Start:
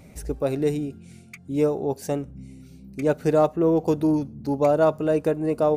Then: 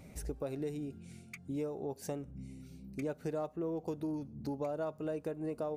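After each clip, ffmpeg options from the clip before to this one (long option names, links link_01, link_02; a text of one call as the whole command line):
ffmpeg -i in.wav -af "acompressor=threshold=-31dB:ratio=4,volume=-5.5dB" out.wav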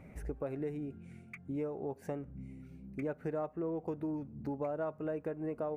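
ffmpeg -i in.wav -af "highshelf=frequency=2900:width_type=q:width=1.5:gain=-12.5" out.wav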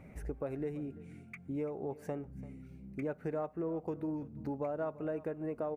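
ffmpeg -i in.wav -af "aecho=1:1:339:0.119" out.wav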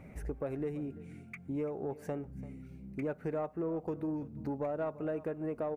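ffmpeg -i in.wav -af "asoftclip=type=tanh:threshold=-26.5dB,volume=2dB" out.wav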